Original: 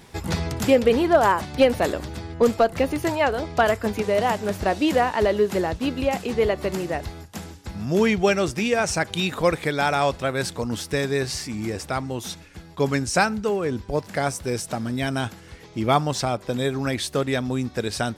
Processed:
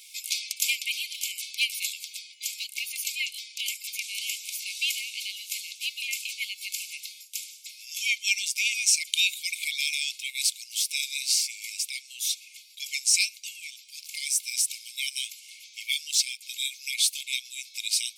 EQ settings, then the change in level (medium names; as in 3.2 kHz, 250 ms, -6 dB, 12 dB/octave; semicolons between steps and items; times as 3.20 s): brick-wall FIR high-pass 2.1 kHz; treble shelf 4.7 kHz +9 dB; +1.5 dB